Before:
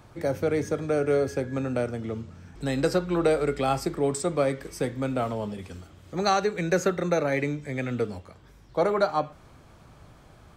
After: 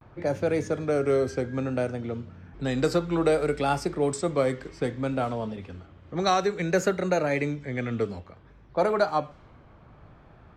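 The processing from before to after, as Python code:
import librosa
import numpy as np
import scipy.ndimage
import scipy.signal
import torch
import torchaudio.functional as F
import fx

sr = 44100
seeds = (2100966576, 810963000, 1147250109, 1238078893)

y = fx.env_lowpass(x, sr, base_hz=2100.0, full_db=-19.5)
y = fx.vibrato(y, sr, rate_hz=0.6, depth_cents=78.0)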